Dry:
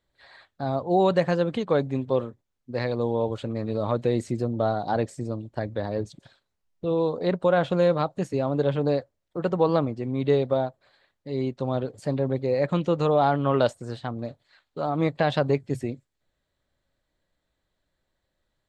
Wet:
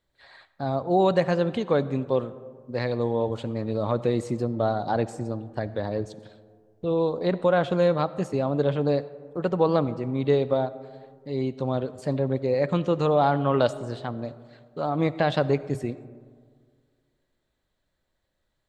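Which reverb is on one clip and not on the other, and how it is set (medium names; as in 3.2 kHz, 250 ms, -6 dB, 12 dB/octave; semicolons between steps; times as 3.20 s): algorithmic reverb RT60 1.9 s, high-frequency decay 0.35×, pre-delay 30 ms, DRR 16 dB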